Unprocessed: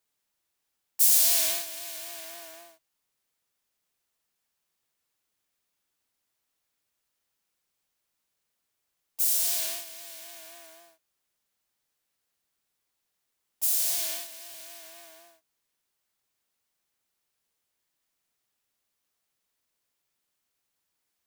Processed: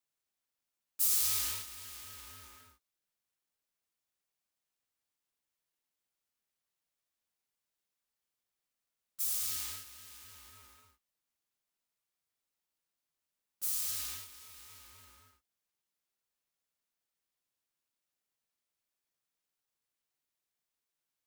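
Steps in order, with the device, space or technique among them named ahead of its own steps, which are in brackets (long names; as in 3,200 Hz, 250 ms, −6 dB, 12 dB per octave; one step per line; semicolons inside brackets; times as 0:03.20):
alien voice (ring modulation 590 Hz; flanger 1.1 Hz, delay 3.1 ms, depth 9.7 ms, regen −67%)
level −1.5 dB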